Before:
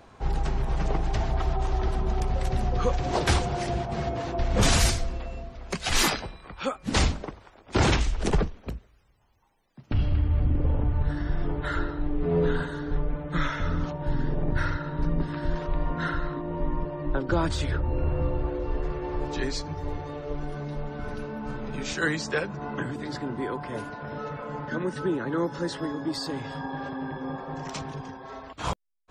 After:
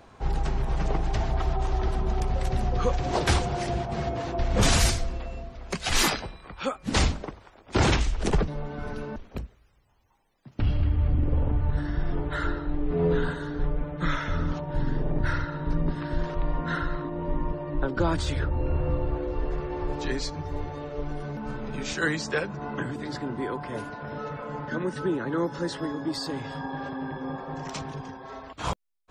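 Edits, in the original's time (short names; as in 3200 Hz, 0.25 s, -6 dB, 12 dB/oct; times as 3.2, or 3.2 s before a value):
20.69–21.37 move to 8.48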